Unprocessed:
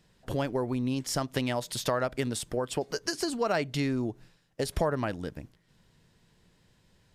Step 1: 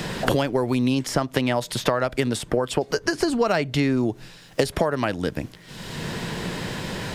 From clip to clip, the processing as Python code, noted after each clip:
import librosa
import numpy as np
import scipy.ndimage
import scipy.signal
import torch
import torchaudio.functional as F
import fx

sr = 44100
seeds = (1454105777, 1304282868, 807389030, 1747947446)

y = fx.bass_treble(x, sr, bass_db=-2, treble_db=-4)
y = fx.band_squash(y, sr, depth_pct=100)
y = y * librosa.db_to_amplitude(8.0)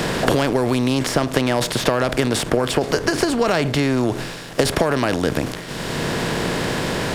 y = fx.bin_compress(x, sr, power=0.6)
y = fx.leveller(y, sr, passes=1)
y = fx.transient(y, sr, attack_db=2, sustain_db=7)
y = y * librosa.db_to_amplitude(-4.0)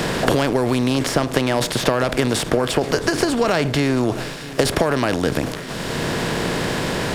y = x + 10.0 ** (-17.0 / 20.0) * np.pad(x, (int(669 * sr / 1000.0), 0))[:len(x)]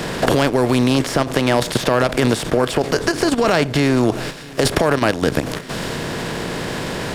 y = fx.level_steps(x, sr, step_db=10)
y = y * librosa.db_to_amplitude(5.0)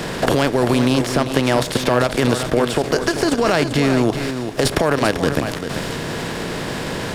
y = x + 10.0 ** (-8.5 / 20.0) * np.pad(x, (int(391 * sr / 1000.0), 0))[:len(x)]
y = y * librosa.db_to_amplitude(-1.0)